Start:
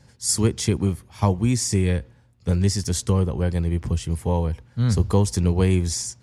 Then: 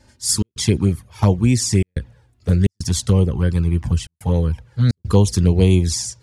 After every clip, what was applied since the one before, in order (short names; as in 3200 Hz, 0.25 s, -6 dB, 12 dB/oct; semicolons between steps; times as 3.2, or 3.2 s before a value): dynamic EQ 3900 Hz, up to +4 dB, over -44 dBFS, Q 1.6; envelope flanger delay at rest 3.4 ms, full sweep at -14 dBFS; step gate "xxx.xxxxxxxxx.xx" 107 bpm -60 dB; gain +5.5 dB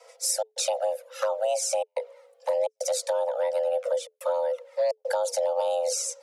limiter -8 dBFS, peak gain reduction 6.5 dB; compressor 2.5:1, threshold -27 dBFS, peak gain reduction 10 dB; frequency shift +430 Hz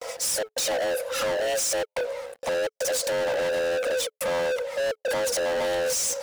limiter -23.5 dBFS, peak gain reduction 9.5 dB; gate with hold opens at -46 dBFS; sample leveller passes 5